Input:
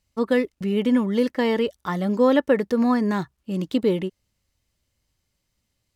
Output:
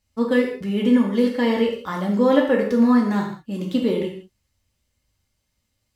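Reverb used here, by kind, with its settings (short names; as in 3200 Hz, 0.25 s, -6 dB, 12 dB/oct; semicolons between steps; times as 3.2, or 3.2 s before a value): non-linear reverb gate 0.21 s falling, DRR -1.5 dB; gain -2.5 dB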